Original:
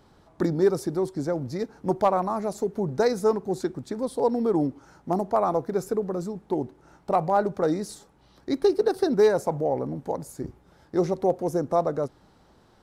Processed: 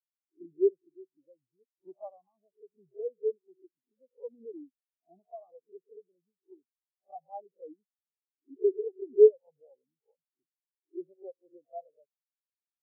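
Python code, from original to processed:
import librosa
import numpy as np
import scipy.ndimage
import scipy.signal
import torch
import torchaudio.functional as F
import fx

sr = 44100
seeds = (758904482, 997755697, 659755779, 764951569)

y = fx.spec_swells(x, sr, rise_s=0.47)
y = fx.low_shelf(y, sr, hz=67.0, db=-4.5)
y = fx.spectral_expand(y, sr, expansion=4.0)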